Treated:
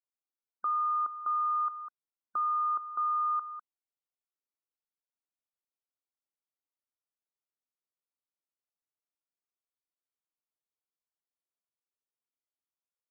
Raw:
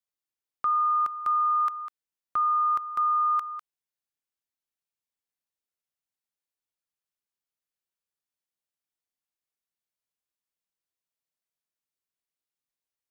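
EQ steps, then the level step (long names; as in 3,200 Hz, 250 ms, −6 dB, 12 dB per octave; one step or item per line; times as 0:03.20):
linear-phase brick-wall band-pass 210–1,500 Hz
−5.5 dB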